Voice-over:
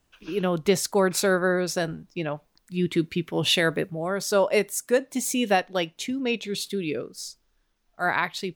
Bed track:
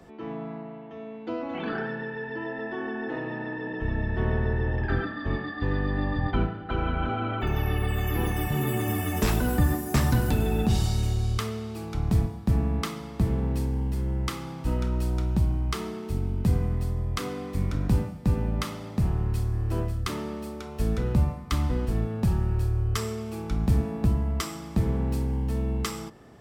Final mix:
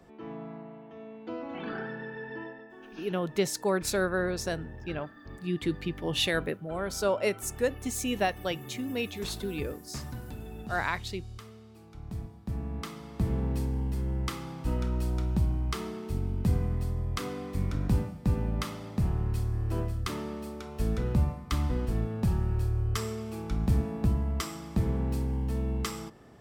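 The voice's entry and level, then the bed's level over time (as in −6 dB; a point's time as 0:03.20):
2.70 s, −6.0 dB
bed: 0:02.41 −5.5 dB
0:02.67 −17 dB
0:11.93 −17 dB
0:13.36 −3 dB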